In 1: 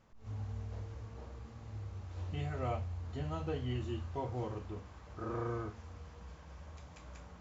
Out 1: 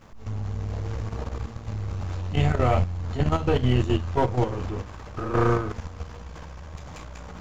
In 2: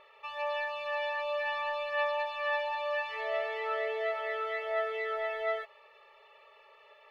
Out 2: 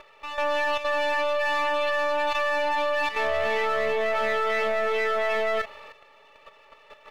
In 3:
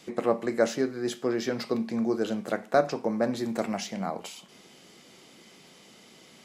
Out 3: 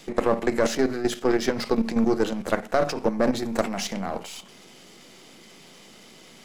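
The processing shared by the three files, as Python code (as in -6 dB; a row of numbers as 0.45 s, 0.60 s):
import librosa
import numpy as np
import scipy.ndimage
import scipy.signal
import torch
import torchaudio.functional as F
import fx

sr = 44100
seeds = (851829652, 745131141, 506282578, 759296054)

y = np.where(x < 0.0, 10.0 ** (-7.0 / 20.0) * x, x)
y = fx.transient(y, sr, attack_db=-1, sustain_db=3)
y = fx.level_steps(y, sr, step_db=10)
y = y * 10.0 ** (-26 / 20.0) / np.sqrt(np.mean(np.square(y)))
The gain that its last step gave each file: +20.5 dB, +15.5 dB, +11.0 dB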